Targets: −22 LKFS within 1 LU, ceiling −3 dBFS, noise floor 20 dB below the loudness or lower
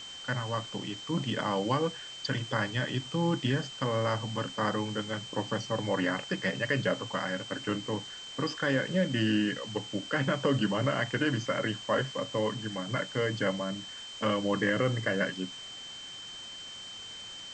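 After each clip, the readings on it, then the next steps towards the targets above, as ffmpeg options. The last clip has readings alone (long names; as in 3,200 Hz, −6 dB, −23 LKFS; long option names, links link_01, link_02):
interfering tone 3,100 Hz; level of the tone −42 dBFS; background noise floor −44 dBFS; target noise floor −52 dBFS; integrated loudness −31.5 LKFS; sample peak −14.0 dBFS; target loudness −22.0 LKFS
→ -af "bandreject=frequency=3100:width=30"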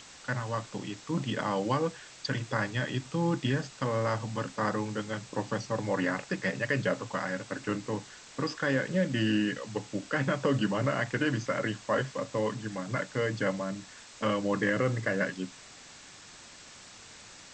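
interfering tone none found; background noise floor −51 dBFS; target noise floor −52 dBFS
→ -af "afftdn=noise_reduction=6:noise_floor=-51"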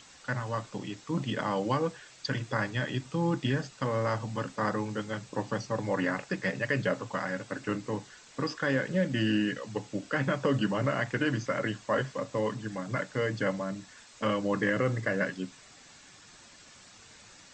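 background noise floor −54 dBFS; integrated loudness −31.5 LKFS; sample peak −14.5 dBFS; target loudness −22.0 LKFS
→ -af "volume=9.5dB"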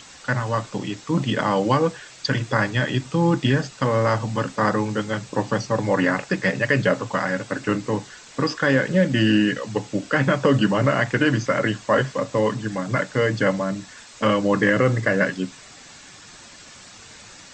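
integrated loudness −22.0 LKFS; sample peak −5.0 dBFS; background noise floor −45 dBFS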